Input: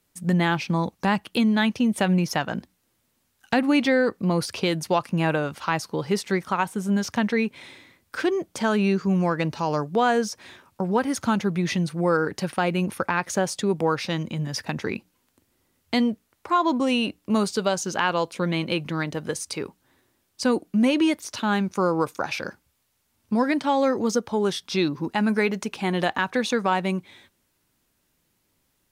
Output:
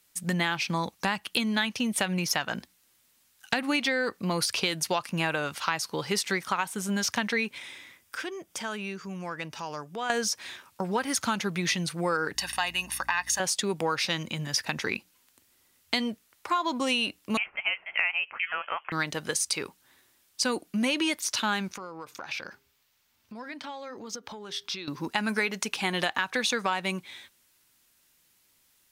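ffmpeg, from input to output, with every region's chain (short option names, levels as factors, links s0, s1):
-filter_complex "[0:a]asettb=1/sr,asplit=3[s0][s1][s2];[s0]atrim=end=7.584[s3];[s1]atrim=start=7.58:end=10.1,asetpts=PTS-STARTPTS,afade=t=in:d=0.004:c=qsin,afade=t=out:st=2.516:d=0.004:c=qsin,acompressor=threshold=0.00447:ratio=1.5:attack=3.2:release=140:knee=1:detection=peak,bandreject=f=4200:w=6.5[s4];[s2]atrim=start=10.096[s5];[s3][s4]acrossfade=d=0.004:c1=hsin:c2=qsin[s6];[s6][s5]acrossfade=d=0.004:c1=qsin:c2=hsin,asettb=1/sr,asplit=3[s7][s8][s9];[s7]atrim=end=12.354[s10];[s8]atrim=start=12.35:end=13.4,asetpts=PTS-STARTPTS,afade=t=in:d=0.004:c=qsin,afade=t=out:st=1.046:d=0.004:c=qsin,highpass=f=1200:p=1,aecho=1:1:1.1:0.73,atrim=end_sample=46305,aeval=exprs='val(0)+0.00562*(sin(2*PI*60*n/s)+sin(2*PI*2*60*n/s)/2+sin(2*PI*3*60*n/s)/3+sin(2*PI*4*60*n/s)/4+sin(2*PI*5*60*n/s)/5)':c=same[s11];[s9]atrim=start=13.396[s12];[s10][s11]acrossfade=d=0.004:c1=hsin:c2=qsin[s13];[s13][s12]acrossfade=d=0.004:c1=qsin:c2=hsin,asettb=1/sr,asplit=3[s14][s15][s16];[s14]atrim=end=17.374[s17];[s15]atrim=start=17.37:end=18.92,asetpts=PTS-STARTPTS,afade=t=in:d=0.004:c=qsin,afade=t=out:st=1.546:d=0.004:c=qsin,highpass=f=950:w=0.5412,highpass=f=950:w=1.3066,acompressor=mode=upward:threshold=0.0316:ratio=2.5:attack=3.2:release=140:knee=2.83:detection=peak,lowpass=f=3100:t=q:w=0.5098,lowpass=f=3100:t=q:w=0.6013,lowpass=f=3100:t=q:w=0.9,lowpass=f=3100:t=q:w=2.563,afreqshift=-3600[s18];[s16]atrim=start=18.916[s19];[s17][s18]acrossfade=d=0.004:c1=hsin:c2=qsin[s20];[s20][s19]acrossfade=d=0.004:c1=qsin:c2=hsin,asettb=1/sr,asplit=3[s21][s22][s23];[s21]atrim=end=21.724[s24];[s22]atrim=start=21.72:end=24.88,asetpts=PTS-STARTPTS,afade=t=in:d=0.004:c=qsin,afade=t=out:st=3.156:d=0.004:c=qsin,equalizer=f=10000:t=o:w=1.1:g=-10.5,acompressor=threshold=0.0178:ratio=6:attack=3.2:release=140:knee=1:detection=peak,bandreject=f=134.7:t=h:w=4,bandreject=f=269.4:t=h:w=4,bandreject=f=404.1:t=h:w=4[s25];[s23]atrim=start=24.876[s26];[s24][s25]acrossfade=d=0.004:c1=hsin:c2=qsin[s27];[s27][s26]acrossfade=d=0.004:c1=qsin:c2=hsin,tiltshelf=f=970:g=-7,acompressor=threshold=0.0708:ratio=6"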